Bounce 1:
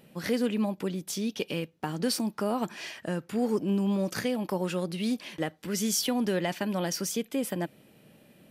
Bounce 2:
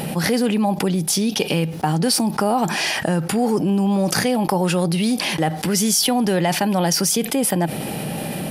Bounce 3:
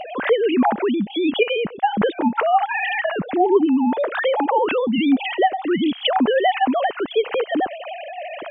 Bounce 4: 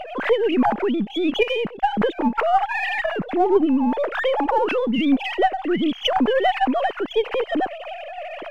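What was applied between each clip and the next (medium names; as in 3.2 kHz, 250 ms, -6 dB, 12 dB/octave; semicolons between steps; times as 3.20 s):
graphic EQ with 31 bands 160 Hz +6 dB, 800 Hz +10 dB, 5 kHz +4 dB, 10 kHz +9 dB; level flattener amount 70%; trim +6 dB
formants replaced by sine waves
partial rectifier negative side -3 dB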